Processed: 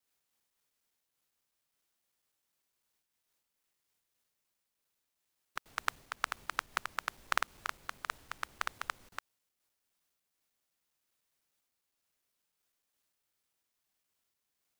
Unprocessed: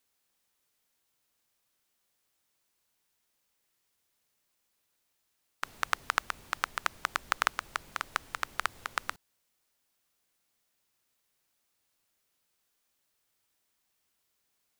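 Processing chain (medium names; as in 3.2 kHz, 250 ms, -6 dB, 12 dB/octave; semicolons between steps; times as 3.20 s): time reversed locally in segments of 101 ms; random flutter of the level, depth 60%; trim -2.5 dB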